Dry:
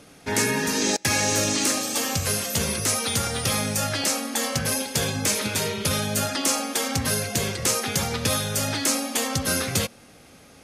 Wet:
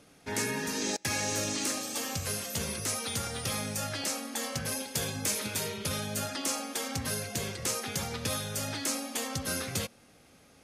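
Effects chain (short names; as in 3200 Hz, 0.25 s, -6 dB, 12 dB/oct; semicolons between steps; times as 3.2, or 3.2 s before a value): 4.95–5.78 high shelf 9800 Hz +6.5 dB; gain -9 dB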